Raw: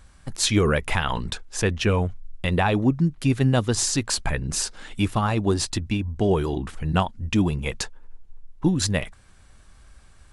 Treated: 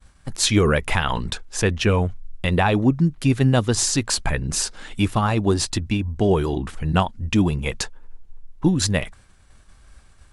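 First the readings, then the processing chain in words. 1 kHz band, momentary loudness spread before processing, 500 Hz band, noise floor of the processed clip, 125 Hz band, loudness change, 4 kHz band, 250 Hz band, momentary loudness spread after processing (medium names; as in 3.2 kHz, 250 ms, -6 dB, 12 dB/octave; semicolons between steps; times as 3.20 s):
+2.5 dB, 9 LU, +2.5 dB, -52 dBFS, +2.5 dB, +2.5 dB, +2.5 dB, +2.5 dB, 9 LU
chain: expander -46 dBFS; trim +2.5 dB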